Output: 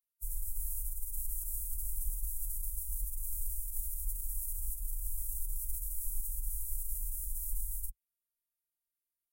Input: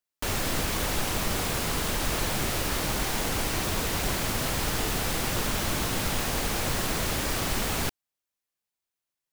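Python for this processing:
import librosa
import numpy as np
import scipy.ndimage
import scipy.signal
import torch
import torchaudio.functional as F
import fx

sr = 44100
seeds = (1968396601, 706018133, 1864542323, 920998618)

y = scipy.signal.sosfilt(scipy.signal.cheby2(4, 50, [120.0, 4200.0], 'bandstop', fs=sr, output='sos'), x)
y = fx.pitch_keep_formants(y, sr, semitones=-5.5)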